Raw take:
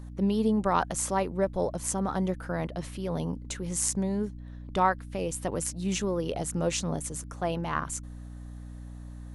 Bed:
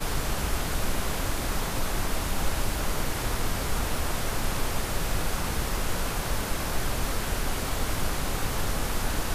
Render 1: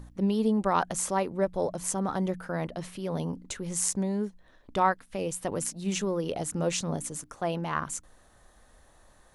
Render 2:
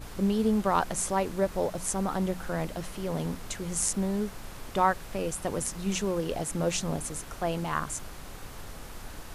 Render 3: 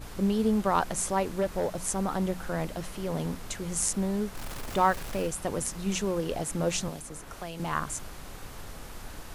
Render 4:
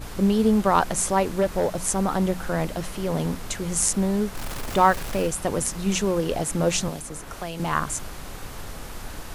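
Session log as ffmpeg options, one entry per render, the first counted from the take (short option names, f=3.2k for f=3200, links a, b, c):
-af "bandreject=f=60:t=h:w=4,bandreject=f=120:t=h:w=4,bandreject=f=180:t=h:w=4,bandreject=f=240:t=h:w=4,bandreject=f=300:t=h:w=4"
-filter_complex "[1:a]volume=-14.5dB[a];[0:a][a]amix=inputs=2:normalize=0"
-filter_complex "[0:a]asettb=1/sr,asplit=3[a][b][c];[a]atrim=end=1.414[d];[b]atrim=start=1.41:end=1.82,asetpts=PTS-STARTPTS,afade=t=in:d=0.004:c=qsin,afade=t=out:st=0.406:d=0.004:c=qsin,asoftclip=type=hard:threshold=-21.5dB[e];[c]atrim=start=1.816[f];[d][e]acrossfade=d=0.004:c1=hsin:c2=qsin[g];[g][f]acrossfade=d=0.004:c1=qsin:c2=hsin,asettb=1/sr,asplit=3[h][i][j];[h]atrim=end=4.354[k];[i]atrim=start=4.35:end=5.27,asetpts=PTS-STARTPTS,afade=t=in:d=0.004:c=qsin,afade=t=out:st=0.916:d=0.004:c=qsin,aeval=exprs='val(0)+0.5*0.0141*sgn(val(0))':c=same[l];[j]atrim=start=5.266[m];[k][l]acrossfade=d=0.004:c1=hsin:c2=qsin[n];[n][m]acrossfade=d=0.004:c1=qsin:c2=hsin,asettb=1/sr,asplit=3[o][p][q];[o]atrim=end=6.884[r];[p]atrim=start=6.88:end=7.6,asetpts=PTS-STARTPTS,afade=t=in:d=0.004:c=qsin,afade=t=out:st=0.716:d=0.004:c=qsin,acrossover=split=240|2000[s][t][u];[s]acompressor=threshold=-43dB:ratio=4[v];[t]acompressor=threshold=-40dB:ratio=4[w];[u]acompressor=threshold=-43dB:ratio=4[x];[v][w][x]amix=inputs=3:normalize=0[y];[q]atrim=start=7.596[z];[r][y]acrossfade=d=0.004:c1=hsin:c2=qsin[aa];[aa][z]acrossfade=d=0.004:c1=qsin:c2=hsin"
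-af "volume=6dB"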